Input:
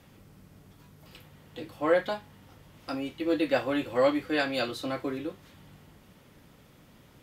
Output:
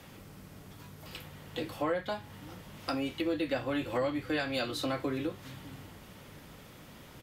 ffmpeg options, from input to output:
-filter_complex "[0:a]lowshelf=f=370:g=-4.5,acrossover=split=170[a][b];[a]aecho=1:1:602:0.596[c];[b]acompressor=threshold=-38dB:ratio=5[d];[c][d]amix=inputs=2:normalize=0,volume=7dB"

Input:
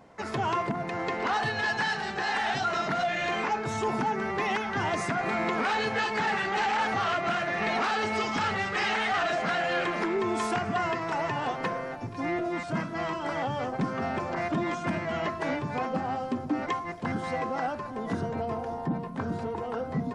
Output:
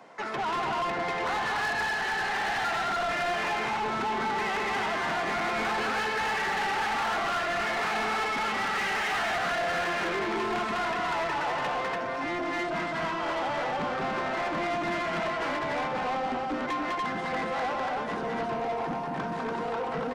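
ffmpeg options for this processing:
-filter_complex "[0:a]highpass=f=120:w=0.5412,highpass=f=120:w=1.3066,acrossover=split=250|1100|3700[a][b][c][d];[d]acompressor=threshold=-60dB:ratio=6[e];[a][b][c][e]amix=inputs=4:normalize=0,asoftclip=type=hard:threshold=-23.5dB,aecho=1:1:201.2|288.6:0.708|0.794,asplit=2[f][g];[g]highpass=f=720:p=1,volume=20dB,asoftclip=type=tanh:threshold=-15.5dB[h];[f][h]amix=inputs=2:normalize=0,lowpass=f=5.5k:p=1,volume=-6dB,volume=-7.5dB"

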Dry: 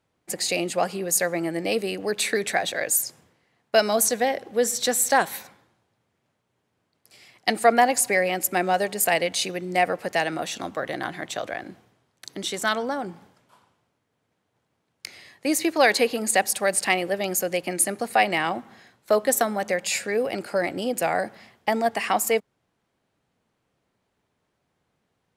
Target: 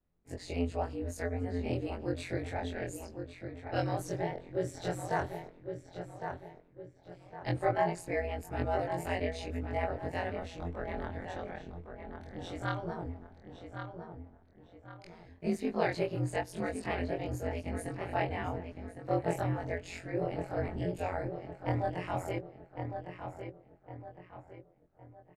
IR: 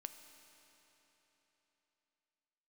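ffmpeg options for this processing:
-filter_complex "[0:a]afftfilt=real='re':imag='-im':win_size=2048:overlap=0.75,asplit=2[a][b];[b]adelay=1109,lowpass=f=2.8k:p=1,volume=-7dB,asplit=2[c][d];[d]adelay=1109,lowpass=f=2.8k:p=1,volume=0.41,asplit=2[e][f];[f]adelay=1109,lowpass=f=2.8k:p=1,volume=0.41,asplit=2[g][h];[h]adelay=1109,lowpass=f=2.8k:p=1,volume=0.41,asplit=2[i][j];[j]adelay=1109,lowpass=f=2.8k:p=1,volume=0.41[k];[a][c][e][g][i][k]amix=inputs=6:normalize=0,aeval=exprs='val(0)*sin(2*PI*88*n/s)':c=same,aemphasis=mode=reproduction:type=riaa,volume=-6.5dB"

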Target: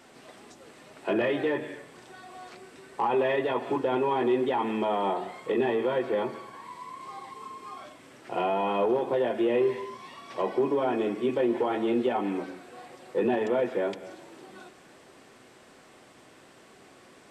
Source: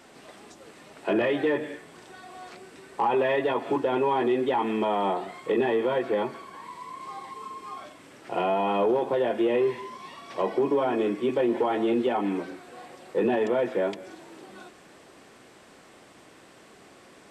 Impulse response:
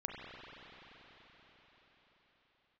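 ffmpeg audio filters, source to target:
-filter_complex "[0:a]asplit=2[a][b];[1:a]atrim=start_sample=2205,afade=t=out:st=0.32:d=0.01,atrim=end_sample=14553,adelay=8[c];[b][c]afir=irnorm=-1:irlink=0,volume=-11.5dB[d];[a][d]amix=inputs=2:normalize=0,volume=-2dB"

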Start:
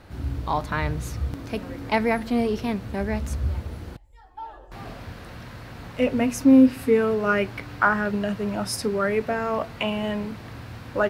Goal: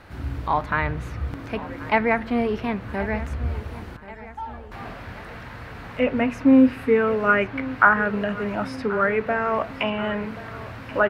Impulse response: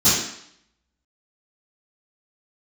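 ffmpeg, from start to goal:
-filter_complex "[0:a]acrossover=split=2200[a][b];[a]crystalizer=i=10:c=0[c];[b]acompressor=threshold=-54dB:ratio=6[d];[c][d]amix=inputs=2:normalize=0,aecho=1:1:1081|2162|3243|4324|5405:0.141|0.0791|0.0443|0.0248|0.0139,volume=-1dB"

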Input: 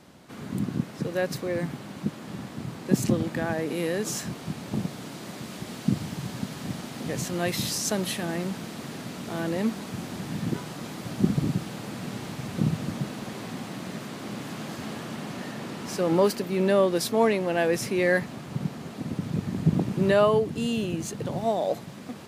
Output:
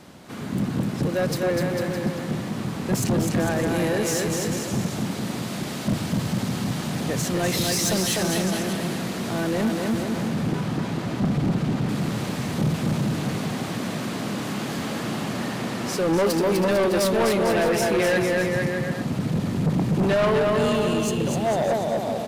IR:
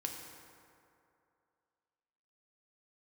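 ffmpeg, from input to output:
-filter_complex "[0:a]asettb=1/sr,asplit=3[a][b][c];[a]atrim=end=10.034[d];[b]atrim=start=10.03:end=11.89,asetpts=PTS-STARTPTS,afade=t=in:d=0.004:c=qsin,afade=t=out:st=1.856:d=0.004:c=qsin,lowpass=f=3.1k:p=1[e];[c]atrim=start=11.886[f];[d][e]acrossfade=d=0.004:c1=hsin:c2=qsin[g];[g][f]acrossfade=d=0.004:c1=qsin:c2=hsin,aecho=1:1:250|450|610|738|840.4:0.631|0.398|0.251|0.158|0.1,asoftclip=type=tanh:threshold=-23dB,volume=6dB"

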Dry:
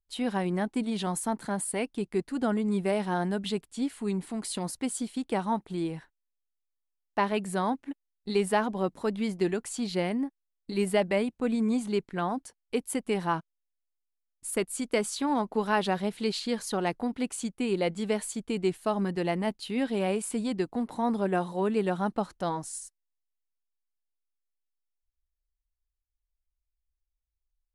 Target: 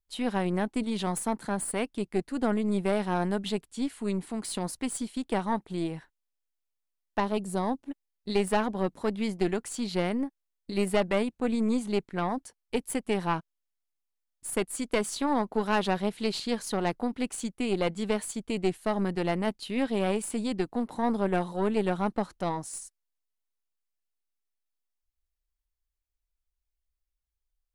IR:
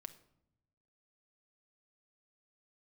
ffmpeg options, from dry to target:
-filter_complex "[0:a]asettb=1/sr,asplit=3[a][b][c];[a]atrim=end=7.204[d];[b]atrim=start=7.2:end=7.9,asetpts=PTS-STARTPTS,afade=t=in:d=0.004:c=qsin,afade=t=out:st=0.696:d=0.004:c=qsin,equalizer=f=1.9k:t=o:w=1:g=-13[e];[c]atrim=start=7.896[f];[d][e]acrossfade=d=0.004:c1=hsin:c2=qsin[g];[g][f]acrossfade=d=0.004:c1=qsin:c2=hsin,aeval=exprs='(tanh(8.91*val(0)+0.65)-tanh(0.65))/8.91':c=same,volume=3dB"

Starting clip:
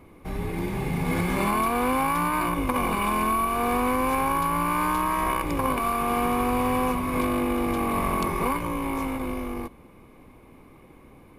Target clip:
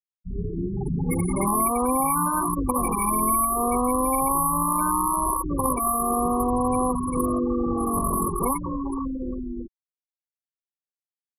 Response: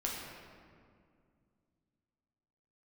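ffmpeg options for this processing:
-af "highshelf=f=6k:t=q:w=1.5:g=11,afftfilt=real='re*gte(hypot(re,im),0.126)':imag='im*gte(hypot(re,im),0.126)':win_size=1024:overlap=0.75,volume=2dB"

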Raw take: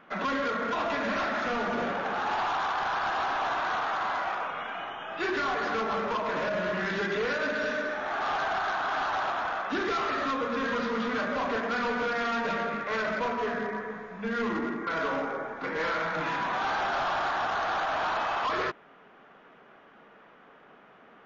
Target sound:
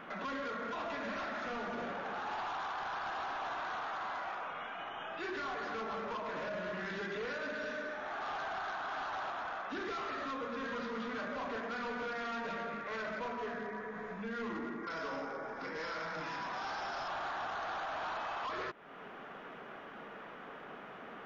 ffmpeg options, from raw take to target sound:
-filter_complex "[0:a]asettb=1/sr,asplit=3[a][b][c];[a]atrim=end=14.834[d];[b]atrim=start=14.83:end=17.08,asetpts=PTS-STARTPTS,afade=t=in:d=0.004:c=qsin,afade=t=out:st=2.246:d=0.004:c=qsin,equalizer=f=5.2k:w=4.7:g=14[e];[c]atrim=start=17.076[f];[d][e]acrossfade=d=0.004:c1=hsin:c2=qsin[g];[g][f]acrossfade=d=0.004:c1=qsin:c2=hsin,alimiter=level_in=16.5dB:limit=-24dB:level=0:latency=1:release=340,volume=-16.5dB,volume=6dB"

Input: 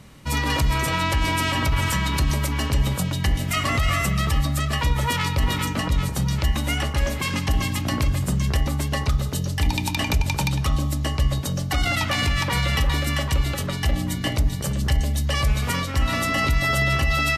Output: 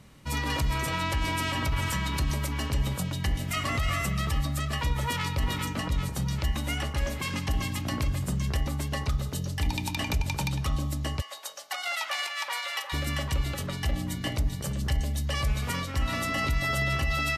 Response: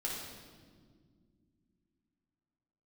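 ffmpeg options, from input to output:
-filter_complex "[0:a]asplit=3[a][b][c];[a]afade=t=out:st=11.2:d=0.02[d];[b]highpass=f=640:w=0.5412,highpass=f=640:w=1.3066,afade=t=in:st=11.2:d=0.02,afade=t=out:st=12.92:d=0.02[e];[c]afade=t=in:st=12.92:d=0.02[f];[d][e][f]amix=inputs=3:normalize=0,volume=-6.5dB"

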